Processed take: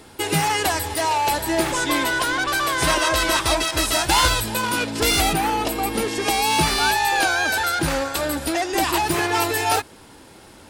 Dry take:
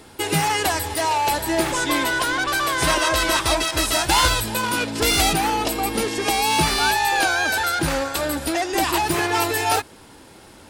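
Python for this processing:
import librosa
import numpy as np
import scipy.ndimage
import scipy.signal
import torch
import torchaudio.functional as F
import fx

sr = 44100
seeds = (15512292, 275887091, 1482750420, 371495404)

y = fx.dynamic_eq(x, sr, hz=5600.0, q=0.82, threshold_db=-32.0, ratio=4.0, max_db=-5, at=(5.19, 6.09))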